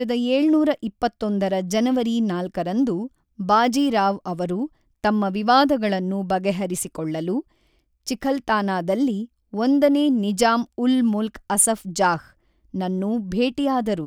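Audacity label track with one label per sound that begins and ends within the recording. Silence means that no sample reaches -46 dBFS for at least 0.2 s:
3.390000	4.680000	sound
5.040000	7.420000	sound
8.070000	9.260000	sound
9.530000	12.310000	sound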